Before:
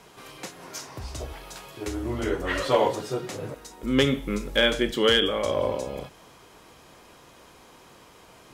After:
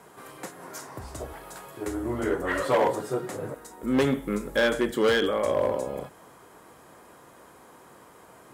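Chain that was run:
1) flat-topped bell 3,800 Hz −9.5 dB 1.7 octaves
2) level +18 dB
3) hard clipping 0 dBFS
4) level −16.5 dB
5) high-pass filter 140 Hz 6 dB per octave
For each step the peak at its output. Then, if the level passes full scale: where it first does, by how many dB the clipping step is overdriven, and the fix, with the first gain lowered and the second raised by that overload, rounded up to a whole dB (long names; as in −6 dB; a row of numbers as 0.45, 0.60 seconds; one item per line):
−10.0, +8.0, 0.0, −16.5, −12.5 dBFS
step 2, 8.0 dB
step 2 +10 dB, step 4 −8.5 dB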